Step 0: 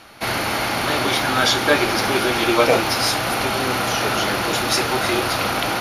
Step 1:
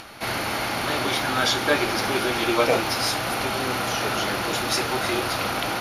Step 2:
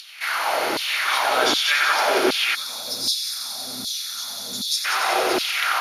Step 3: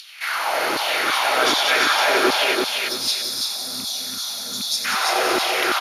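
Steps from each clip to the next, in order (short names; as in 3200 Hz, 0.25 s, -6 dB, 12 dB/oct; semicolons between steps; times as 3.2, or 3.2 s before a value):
upward compressor, threshold -30 dBFS; gain -4.5 dB
multi-head echo 92 ms, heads first and second, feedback 74%, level -9 dB; spectral gain 2.55–4.85, 260–3300 Hz -22 dB; LFO high-pass saw down 1.3 Hz 300–4000 Hz
rattling part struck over -35 dBFS, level -25 dBFS; on a send: feedback echo 0.336 s, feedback 30%, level -3.5 dB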